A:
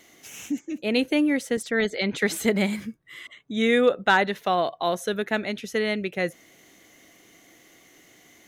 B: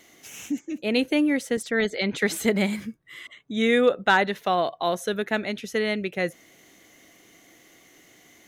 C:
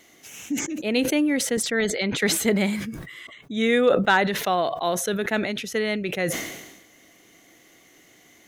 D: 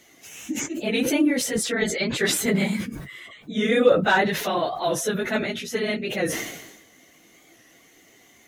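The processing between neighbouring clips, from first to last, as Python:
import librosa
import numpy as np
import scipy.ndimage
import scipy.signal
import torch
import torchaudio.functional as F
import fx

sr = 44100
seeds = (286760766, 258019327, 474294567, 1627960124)

y1 = x
y2 = fx.sustainer(y1, sr, db_per_s=52.0)
y3 = fx.phase_scramble(y2, sr, seeds[0], window_ms=50)
y3 = fx.record_warp(y3, sr, rpm=45.0, depth_cents=100.0)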